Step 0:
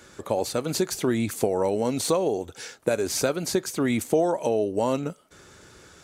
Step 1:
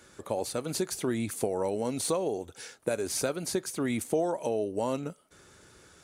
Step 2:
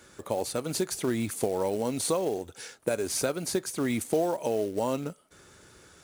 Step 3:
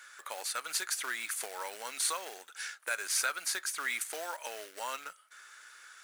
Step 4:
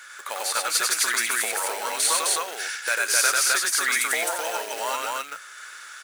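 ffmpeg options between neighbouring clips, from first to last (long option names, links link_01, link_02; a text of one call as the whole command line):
ffmpeg -i in.wav -af "equalizer=frequency=9600:width_type=o:width=0.21:gain=8.5,volume=-6dB" out.wav
ffmpeg -i in.wav -af "acrusher=bits=5:mode=log:mix=0:aa=0.000001,volume=1.5dB" out.wav
ffmpeg -i in.wav -af "highpass=frequency=1500:width_type=q:width=2.3" out.wav
ffmpeg -i in.wav -af "aecho=1:1:96.21|259.5:0.794|0.891,volume=8.5dB" out.wav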